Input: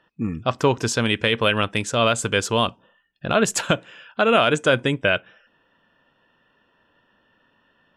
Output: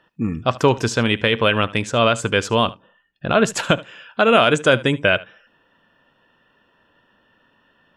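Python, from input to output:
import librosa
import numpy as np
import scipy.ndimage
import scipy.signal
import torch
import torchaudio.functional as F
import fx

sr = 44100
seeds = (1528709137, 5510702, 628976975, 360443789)

y = fx.high_shelf(x, sr, hz=6700.0, db=-11.5, at=(0.88, 3.59))
y = y + 10.0 ** (-20.0 / 20.0) * np.pad(y, (int(74 * sr / 1000.0), 0))[:len(y)]
y = y * librosa.db_to_amplitude(3.0)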